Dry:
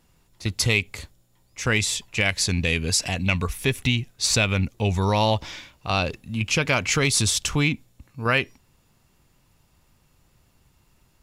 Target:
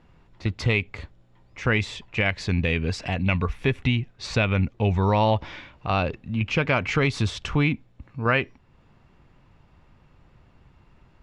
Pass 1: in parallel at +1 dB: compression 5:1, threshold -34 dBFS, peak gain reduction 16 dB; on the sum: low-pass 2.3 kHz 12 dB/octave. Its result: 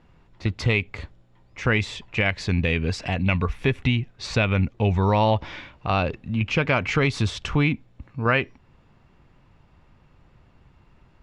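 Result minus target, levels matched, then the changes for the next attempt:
compression: peak gain reduction -7 dB
change: compression 5:1, threshold -42.5 dBFS, peak gain reduction 23 dB

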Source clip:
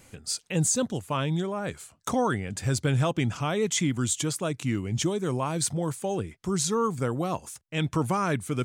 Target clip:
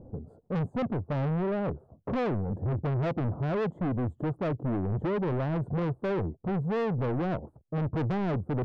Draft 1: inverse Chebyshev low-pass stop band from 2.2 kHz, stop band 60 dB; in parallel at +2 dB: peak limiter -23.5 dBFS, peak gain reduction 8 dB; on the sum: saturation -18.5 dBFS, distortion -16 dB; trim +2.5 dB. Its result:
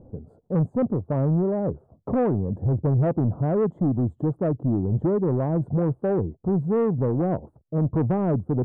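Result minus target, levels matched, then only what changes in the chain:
saturation: distortion -9 dB
change: saturation -29 dBFS, distortion -7 dB

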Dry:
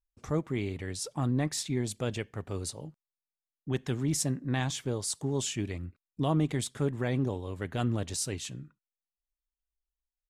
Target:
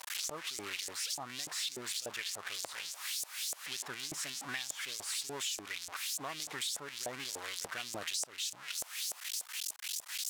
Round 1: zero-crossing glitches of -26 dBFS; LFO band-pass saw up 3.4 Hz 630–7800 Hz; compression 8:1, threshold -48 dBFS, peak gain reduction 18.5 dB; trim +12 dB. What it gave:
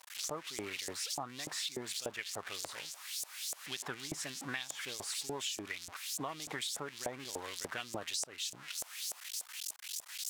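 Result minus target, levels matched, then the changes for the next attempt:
zero-crossing glitches: distortion -10 dB
change: zero-crossing glitches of -15.5 dBFS

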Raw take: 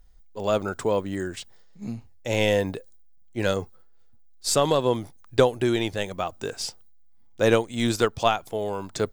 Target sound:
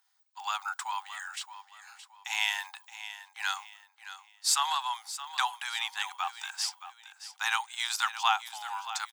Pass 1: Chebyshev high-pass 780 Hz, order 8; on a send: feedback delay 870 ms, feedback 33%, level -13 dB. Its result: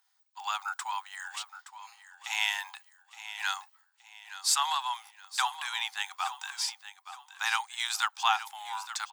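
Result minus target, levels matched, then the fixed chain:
echo 249 ms late
Chebyshev high-pass 780 Hz, order 8; on a send: feedback delay 621 ms, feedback 33%, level -13 dB

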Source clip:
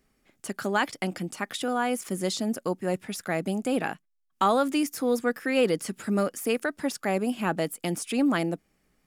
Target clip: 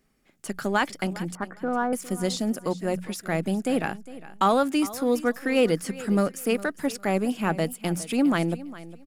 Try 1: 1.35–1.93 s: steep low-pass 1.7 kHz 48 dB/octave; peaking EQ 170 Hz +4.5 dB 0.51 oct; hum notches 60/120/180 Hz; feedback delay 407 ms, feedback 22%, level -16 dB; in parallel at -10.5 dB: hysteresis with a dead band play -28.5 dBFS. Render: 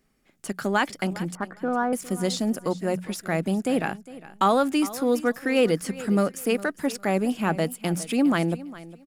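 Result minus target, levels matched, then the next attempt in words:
hysteresis with a dead band: distortion -11 dB
1.35–1.93 s: steep low-pass 1.7 kHz 48 dB/octave; peaking EQ 170 Hz +4.5 dB 0.51 oct; hum notches 60/120/180 Hz; feedback delay 407 ms, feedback 22%, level -16 dB; in parallel at -10.5 dB: hysteresis with a dead band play -18.5 dBFS

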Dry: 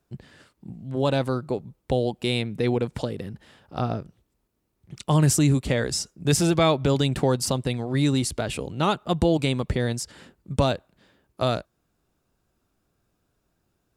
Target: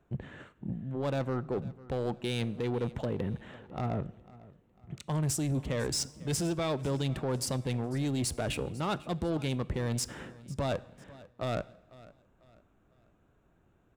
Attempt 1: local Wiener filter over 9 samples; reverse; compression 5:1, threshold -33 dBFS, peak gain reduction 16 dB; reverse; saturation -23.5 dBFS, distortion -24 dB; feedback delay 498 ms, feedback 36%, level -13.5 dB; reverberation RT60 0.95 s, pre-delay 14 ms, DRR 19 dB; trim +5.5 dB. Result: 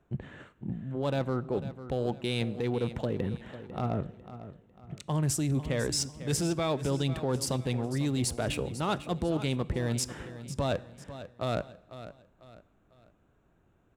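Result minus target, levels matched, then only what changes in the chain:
saturation: distortion -10 dB; echo-to-direct +4.5 dB
change: saturation -30.5 dBFS, distortion -15 dB; change: feedback delay 498 ms, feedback 36%, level -20.5 dB

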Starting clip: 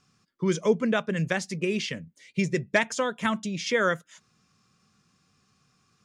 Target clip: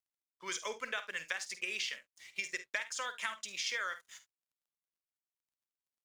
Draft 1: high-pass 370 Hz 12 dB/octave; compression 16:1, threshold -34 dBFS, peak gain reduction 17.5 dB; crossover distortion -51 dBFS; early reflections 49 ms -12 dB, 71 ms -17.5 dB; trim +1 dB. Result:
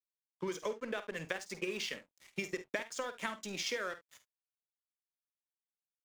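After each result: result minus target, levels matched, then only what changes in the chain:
500 Hz band +9.5 dB; crossover distortion: distortion +8 dB
change: high-pass 1.3 kHz 12 dB/octave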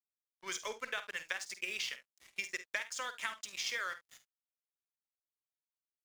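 crossover distortion: distortion +9 dB
change: crossover distortion -62 dBFS

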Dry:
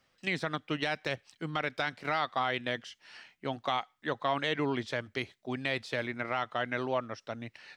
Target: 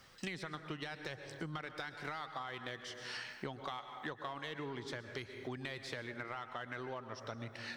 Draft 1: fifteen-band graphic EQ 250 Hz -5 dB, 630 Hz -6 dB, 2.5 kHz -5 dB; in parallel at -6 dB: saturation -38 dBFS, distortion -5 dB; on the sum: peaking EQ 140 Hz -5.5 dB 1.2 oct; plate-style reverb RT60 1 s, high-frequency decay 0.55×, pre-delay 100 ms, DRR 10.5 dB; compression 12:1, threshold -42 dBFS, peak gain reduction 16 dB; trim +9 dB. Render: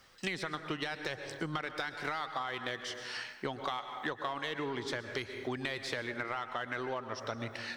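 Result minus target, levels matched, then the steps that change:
compression: peak gain reduction -6.5 dB; 125 Hz band -4.0 dB
change: compression 12:1, threshold -49 dBFS, peak gain reduction 22.5 dB; remove: peaking EQ 140 Hz -5.5 dB 1.2 oct

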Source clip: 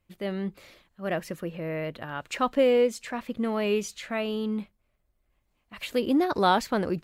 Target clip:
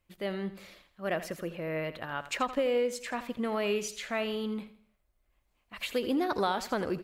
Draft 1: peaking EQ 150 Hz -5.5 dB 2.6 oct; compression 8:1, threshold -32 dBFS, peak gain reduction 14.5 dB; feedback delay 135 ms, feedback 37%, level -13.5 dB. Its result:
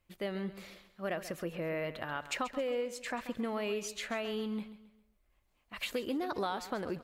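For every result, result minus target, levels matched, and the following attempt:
echo 53 ms late; compression: peak gain reduction +6 dB
peaking EQ 150 Hz -5.5 dB 2.6 oct; compression 8:1, threshold -32 dBFS, peak gain reduction 14.5 dB; feedback delay 82 ms, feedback 37%, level -13.5 dB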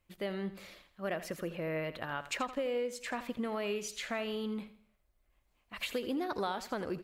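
compression: peak gain reduction +6 dB
peaking EQ 150 Hz -5.5 dB 2.6 oct; compression 8:1, threshold -25 dBFS, peak gain reduction 8.5 dB; feedback delay 82 ms, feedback 37%, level -13.5 dB

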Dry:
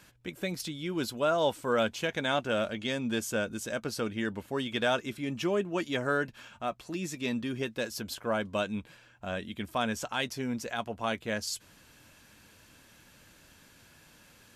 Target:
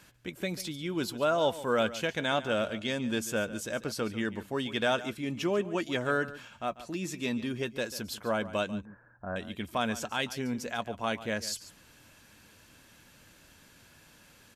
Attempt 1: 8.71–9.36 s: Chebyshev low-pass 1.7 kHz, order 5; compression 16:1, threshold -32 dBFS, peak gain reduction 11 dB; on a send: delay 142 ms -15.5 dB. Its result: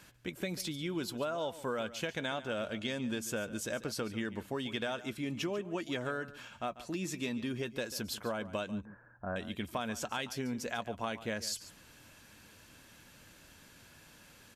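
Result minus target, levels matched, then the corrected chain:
compression: peak gain reduction +11 dB
8.71–9.36 s: Chebyshev low-pass 1.7 kHz, order 5; on a send: delay 142 ms -15.5 dB

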